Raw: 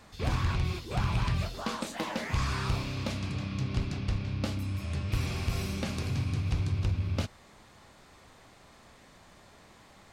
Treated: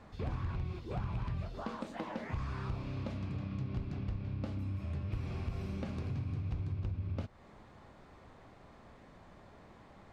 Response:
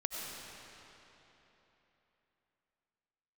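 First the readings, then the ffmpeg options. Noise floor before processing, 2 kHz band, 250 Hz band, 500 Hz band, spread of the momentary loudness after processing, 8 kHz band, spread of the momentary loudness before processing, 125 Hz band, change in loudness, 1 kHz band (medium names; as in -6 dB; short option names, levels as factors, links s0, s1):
-57 dBFS, -12.0 dB, -5.5 dB, -6.0 dB, 19 LU, under -20 dB, 5 LU, -6.5 dB, -7.0 dB, -8.5 dB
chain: -af "acompressor=threshold=0.0126:ratio=3,lowpass=f=1000:p=1,volume=1.19"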